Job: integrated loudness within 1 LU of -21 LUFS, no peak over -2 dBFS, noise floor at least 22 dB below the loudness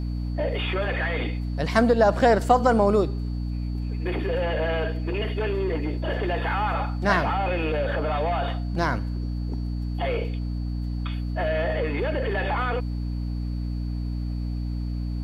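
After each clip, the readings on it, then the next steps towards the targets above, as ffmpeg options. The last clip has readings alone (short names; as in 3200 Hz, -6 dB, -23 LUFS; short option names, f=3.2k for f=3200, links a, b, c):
hum 60 Hz; harmonics up to 300 Hz; hum level -26 dBFS; steady tone 4500 Hz; tone level -54 dBFS; loudness -25.5 LUFS; peak -4.5 dBFS; loudness target -21.0 LUFS
-> -af "bandreject=f=60:t=h:w=4,bandreject=f=120:t=h:w=4,bandreject=f=180:t=h:w=4,bandreject=f=240:t=h:w=4,bandreject=f=300:t=h:w=4"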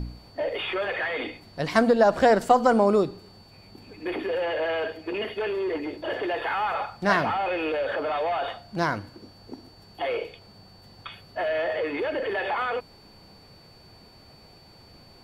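hum none; steady tone 4500 Hz; tone level -54 dBFS
-> -af "bandreject=f=4.5k:w=30"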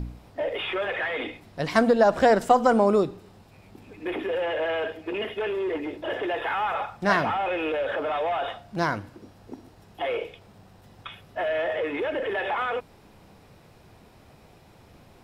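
steady tone none; loudness -26.0 LUFS; peak -5.5 dBFS; loudness target -21.0 LUFS
-> -af "volume=5dB,alimiter=limit=-2dB:level=0:latency=1"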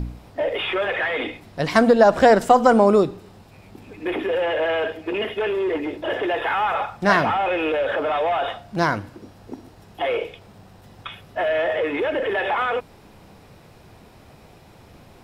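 loudness -21.0 LUFS; peak -2.0 dBFS; noise floor -49 dBFS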